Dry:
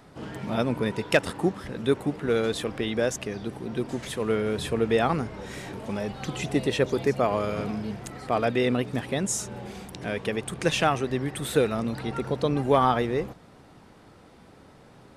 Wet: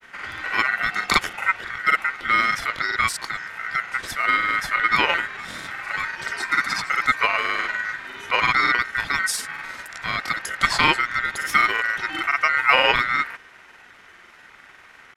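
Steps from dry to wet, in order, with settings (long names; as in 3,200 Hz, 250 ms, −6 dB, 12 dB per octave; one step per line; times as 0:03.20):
granular cloud, grains 20 per second, spray 37 ms, pitch spread up and down by 0 semitones
ring modulation 1,700 Hz
level +8 dB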